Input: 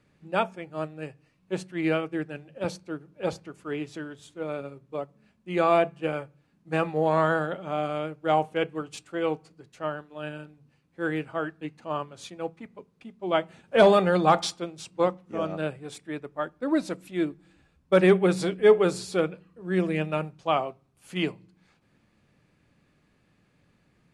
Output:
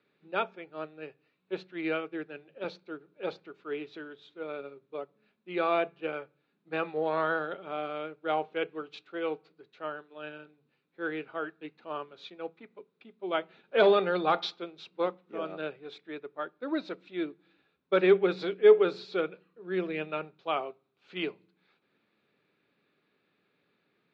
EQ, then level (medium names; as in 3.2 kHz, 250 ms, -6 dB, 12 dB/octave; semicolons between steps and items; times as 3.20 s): distance through air 51 m; cabinet simulation 240–4700 Hz, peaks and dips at 410 Hz +8 dB, 1.4 kHz +6 dB, 2.4 kHz +5 dB, 3.8 kHz +10 dB; -7.5 dB